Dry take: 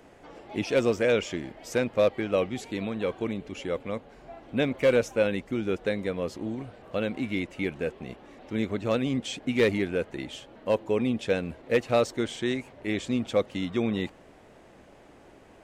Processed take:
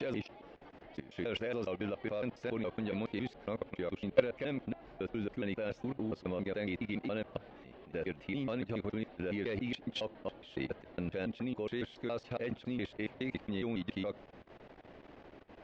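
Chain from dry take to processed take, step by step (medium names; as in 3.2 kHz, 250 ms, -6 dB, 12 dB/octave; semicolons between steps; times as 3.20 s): slices played last to first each 139 ms, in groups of 6; level held to a coarse grid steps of 18 dB; low-pass 4.5 kHz 24 dB/octave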